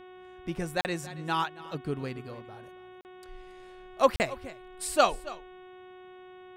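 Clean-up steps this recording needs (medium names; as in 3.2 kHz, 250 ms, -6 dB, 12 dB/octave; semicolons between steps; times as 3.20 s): de-hum 367.7 Hz, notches 10; interpolate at 0.81/3.01/4.16 s, 39 ms; inverse comb 277 ms -18 dB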